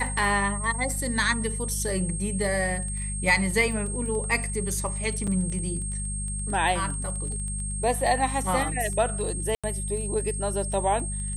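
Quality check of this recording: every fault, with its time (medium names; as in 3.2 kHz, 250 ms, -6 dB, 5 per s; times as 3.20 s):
crackle 13 per s -33 dBFS
hum 50 Hz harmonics 4 -32 dBFS
whine 8.5 kHz -33 dBFS
5.27–5.28 s: dropout 5.5 ms
9.55–9.64 s: dropout 86 ms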